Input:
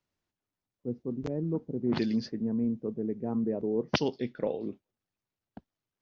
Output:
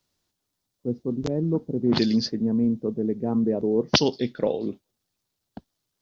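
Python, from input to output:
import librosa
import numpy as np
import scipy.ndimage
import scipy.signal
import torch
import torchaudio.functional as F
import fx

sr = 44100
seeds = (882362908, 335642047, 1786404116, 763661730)

y = fx.high_shelf_res(x, sr, hz=3100.0, db=6.0, q=1.5)
y = F.gain(torch.from_numpy(y), 7.0).numpy()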